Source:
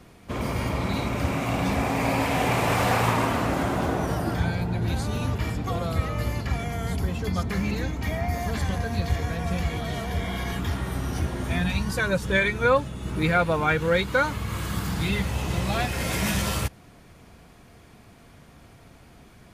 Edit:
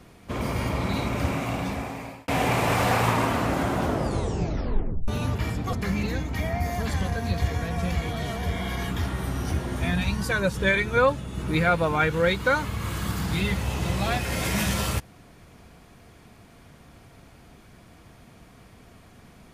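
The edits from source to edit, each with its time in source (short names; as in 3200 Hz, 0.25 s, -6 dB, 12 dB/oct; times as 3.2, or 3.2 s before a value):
1.26–2.28 fade out
3.82 tape stop 1.26 s
5.73–7.41 cut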